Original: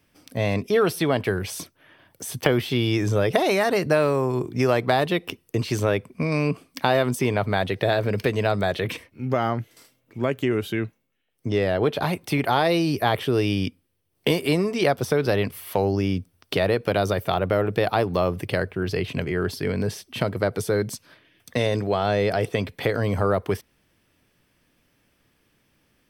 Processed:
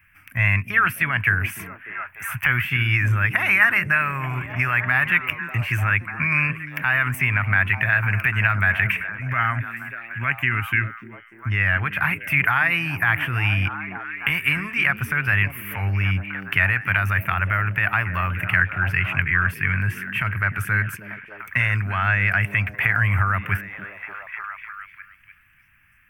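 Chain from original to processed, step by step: high shelf 2000 Hz -9 dB; delay with a stepping band-pass 0.296 s, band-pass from 250 Hz, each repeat 0.7 oct, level -3.5 dB; limiter -13.5 dBFS, peak gain reduction 9 dB; EQ curve 100 Hz 0 dB, 470 Hz -30 dB, 1600 Hz +12 dB, 2600 Hz +11 dB, 3900 Hz -20 dB, 15000 Hz +8 dB; gain +7 dB

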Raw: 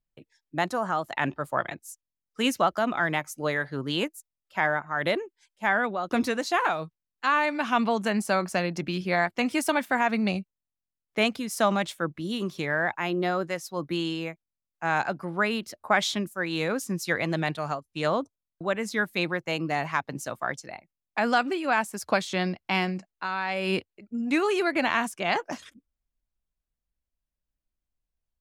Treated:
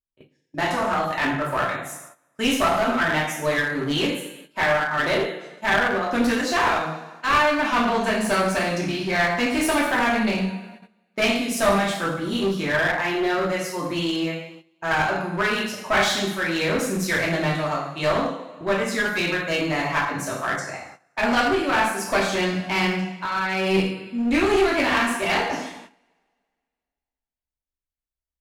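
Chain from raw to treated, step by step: two-slope reverb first 0.69 s, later 2.1 s, from -18 dB, DRR -6 dB; gate -43 dBFS, range -14 dB; one-sided clip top -21.5 dBFS

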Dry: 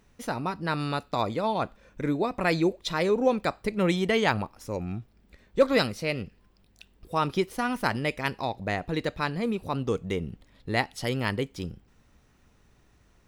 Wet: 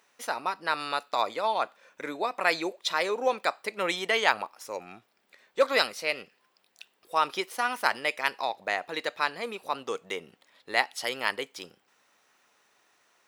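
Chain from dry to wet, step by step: HPF 680 Hz 12 dB/oct; gain +3 dB

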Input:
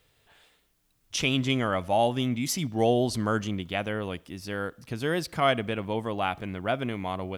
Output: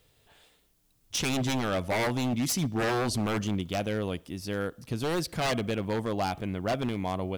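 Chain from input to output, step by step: bell 1700 Hz -5.5 dB 1.9 oct; wavefolder -24.5 dBFS; gain +2.5 dB

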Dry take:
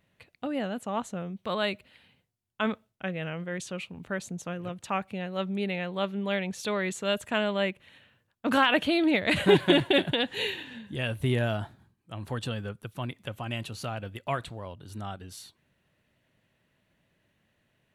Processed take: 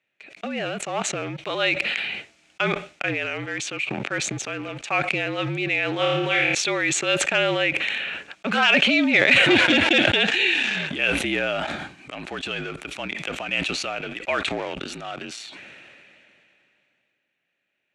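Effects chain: high shelf 4800 Hz -4 dB; sample leveller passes 2; frequency shift -48 Hz; speaker cabinet 340–7500 Hz, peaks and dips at 480 Hz -7 dB, 1000 Hz -9 dB, 2400 Hz +9 dB, 4900 Hz -3 dB; 5.96–6.55 flutter echo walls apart 4.8 m, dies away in 0.59 s; sustainer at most 21 dB/s

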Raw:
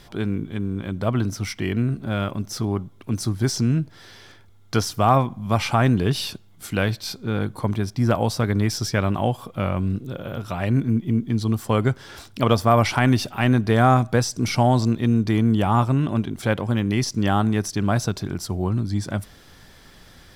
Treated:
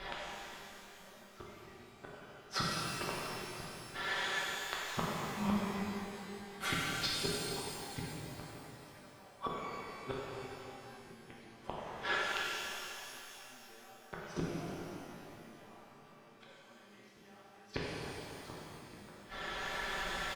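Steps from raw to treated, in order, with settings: three-band isolator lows -15 dB, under 430 Hz, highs -22 dB, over 3300 Hz; comb 5.2 ms, depth 72%; compressor 10:1, threshold -28 dBFS, peak gain reduction 17.5 dB; flipped gate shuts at -30 dBFS, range -39 dB; shimmer reverb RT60 2.9 s, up +12 st, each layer -8 dB, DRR -6 dB; gain +6 dB

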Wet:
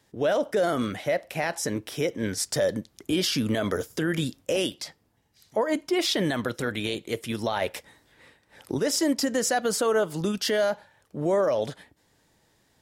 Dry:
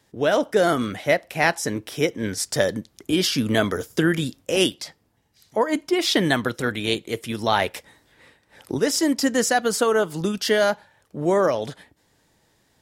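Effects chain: dynamic EQ 570 Hz, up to +6 dB, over -34 dBFS, Q 3.5; limiter -14 dBFS, peak gain reduction 10 dB; gain -2 dB

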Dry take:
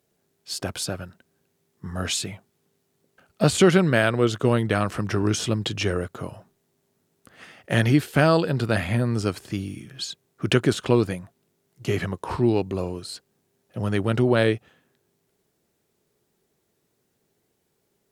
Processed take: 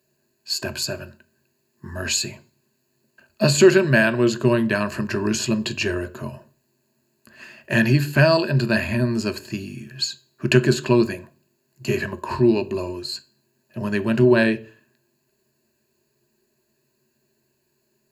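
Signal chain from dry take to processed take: ripple EQ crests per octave 1.4, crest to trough 13 dB; reverb RT60 0.40 s, pre-delay 3 ms, DRR 10.5 dB

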